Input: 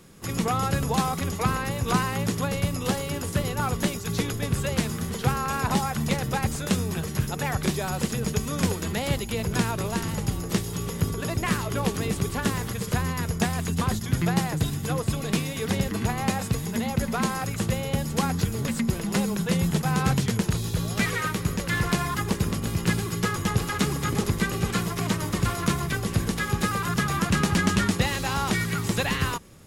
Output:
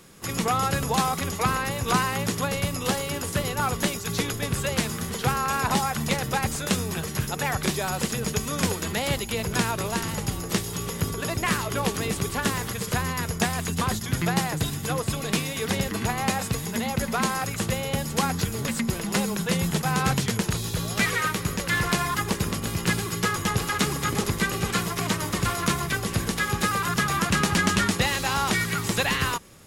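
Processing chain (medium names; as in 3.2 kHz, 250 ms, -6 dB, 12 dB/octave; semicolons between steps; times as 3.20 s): bass shelf 420 Hz -6.5 dB; trim +3.5 dB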